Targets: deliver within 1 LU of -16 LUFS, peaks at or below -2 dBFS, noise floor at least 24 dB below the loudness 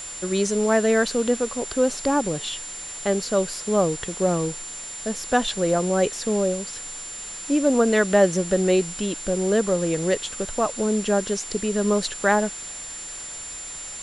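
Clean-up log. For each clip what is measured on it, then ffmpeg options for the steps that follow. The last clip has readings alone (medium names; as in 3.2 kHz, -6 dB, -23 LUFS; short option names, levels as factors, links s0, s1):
steady tone 7.2 kHz; tone level -34 dBFS; noise floor -36 dBFS; noise floor target -48 dBFS; loudness -23.5 LUFS; peak level -6.0 dBFS; loudness target -16.0 LUFS
-> -af "bandreject=f=7200:w=30"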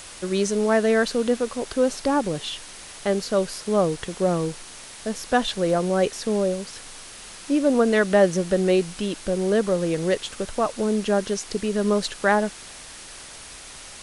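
steady tone not found; noise floor -42 dBFS; noise floor target -47 dBFS
-> -af "afftdn=nr=6:nf=-42"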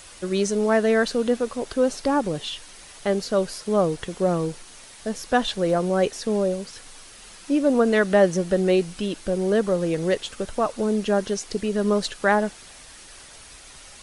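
noise floor -45 dBFS; noise floor target -48 dBFS
-> -af "afftdn=nr=6:nf=-45"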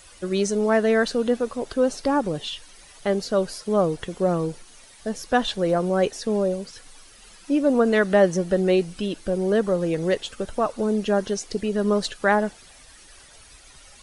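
noise floor -49 dBFS; loudness -23.5 LUFS; peak level -6.0 dBFS; loudness target -16.0 LUFS
-> -af "volume=2.37,alimiter=limit=0.794:level=0:latency=1"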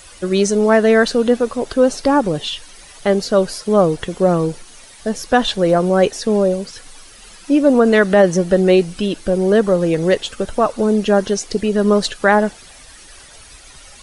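loudness -16.0 LUFS; peak level -2.0 dBFS; noise floor -42 dBFS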